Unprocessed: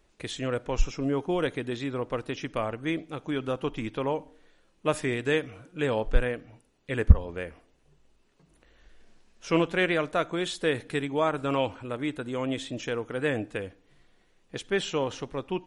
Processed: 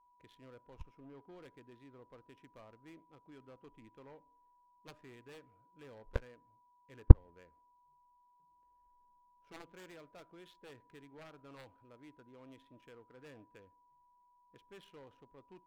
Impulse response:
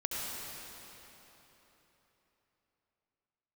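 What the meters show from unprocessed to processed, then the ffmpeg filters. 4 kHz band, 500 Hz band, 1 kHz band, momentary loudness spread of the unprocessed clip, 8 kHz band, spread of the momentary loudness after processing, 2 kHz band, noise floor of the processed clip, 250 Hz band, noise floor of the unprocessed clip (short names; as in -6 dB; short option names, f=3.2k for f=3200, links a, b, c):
under -25 dB, -21.5 dB, -21.0 dB, 10 LU, under -25 dB, 20 LU, -26.0 dB, -70 dBFS, -15.5 dB, -66 dBFS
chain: -af "adynamicsmooth=sensitivity=7:basefreq=970,aeval=exprs='val(0)+0.00794*sin(2*PI*980*n/s)':c=same,aeval=exprs='0.75*(cos(1*acos(clip(val(0)/0.75,-1,1)))-cos(1*PI/2))+0.266*(cos(3*acos(clip(val(0)/0.75,-1,1)))-cos(3*PI/2))':c=same,volume=-1dB"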